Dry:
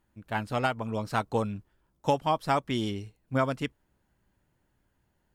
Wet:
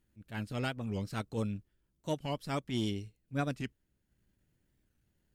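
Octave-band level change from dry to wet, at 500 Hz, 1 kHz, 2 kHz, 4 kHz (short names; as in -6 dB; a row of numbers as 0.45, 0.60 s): -9.0, -13.5, -8.0, -4.5 dB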